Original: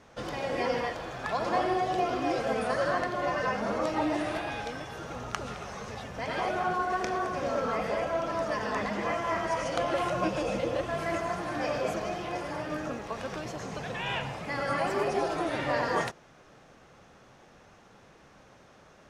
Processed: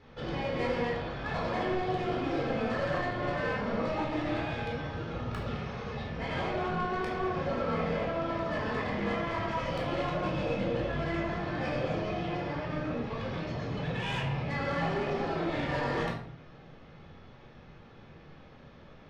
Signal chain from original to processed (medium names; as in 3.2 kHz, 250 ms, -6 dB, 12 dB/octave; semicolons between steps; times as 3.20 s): low-pass 4.1 kHz 24 dB/octave; peaking EQ 940 Hz -6.5 dB 3 oct; saturation -33 dBFS, distortion -12 dB; simulated room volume 870 m³, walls furnished, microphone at 4.1 m